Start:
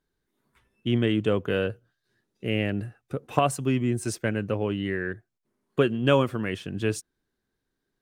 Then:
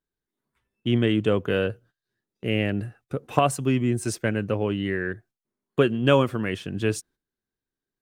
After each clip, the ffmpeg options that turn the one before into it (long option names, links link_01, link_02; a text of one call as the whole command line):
ffmpeg -i in.wav -af "agate=range=-12dB:threshold=-53dB:ratio=16:detection=peak,volume=2dB" out.wav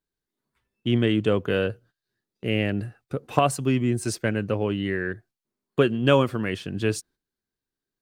ffmpeg -i in.wav -af "equalizer=frequency=4500:width=3.7:gain=4.5" out.wav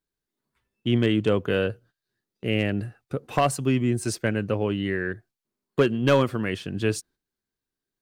ffmpeg -i in.wav -af "asoftclip=type=hard:threshold=-11dB" out.wav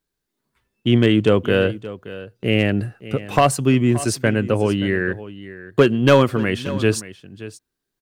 ffmpeg -i in.wav -af "aecho=1:1:576:0.158,volume=6.5dB" out.wav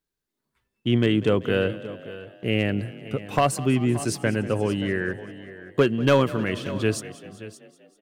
ffmpeg -i in.wav -filter_complex "[0:a]asplit=7[link_01][link_02][link_03][link_04][link_05][link_06][link_07];[link_02]adelay=193,afreqshift=32,volume=-18dB[link_08];[link_03]adelay=386,afreqshift=64,volume=-21.9dB[link_09];[link_04]adelay=579,afreqshift=96,volume=-25.8dB[link_10];[link_05]adelay=772,afreqshift=128,volume=-29.6dB[link_11];[link_06]adelay=965,afreqshift=160,volume=-33.5dB[link_12];[link_07]adelay=1158,afreqshift=192,volume=-37.4dB[link_13];[link_01][link_08][link_09][link_10][link_11][link_12][link_13]amix=inputs=7:normalize=0,volume=-5.5dB" out.wav